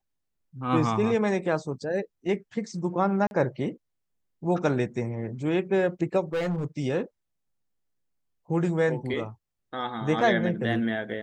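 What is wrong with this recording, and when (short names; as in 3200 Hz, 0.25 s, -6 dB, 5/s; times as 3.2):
3.27–3.31 gap 41 ms
6.33–6.64 clipped -24 dBFS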